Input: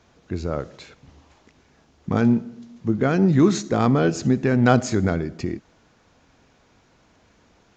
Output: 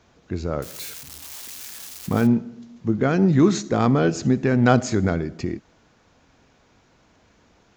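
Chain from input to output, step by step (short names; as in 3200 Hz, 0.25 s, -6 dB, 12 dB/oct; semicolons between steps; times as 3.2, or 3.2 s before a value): 0.62–2.27 switching spikes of -26 dBFS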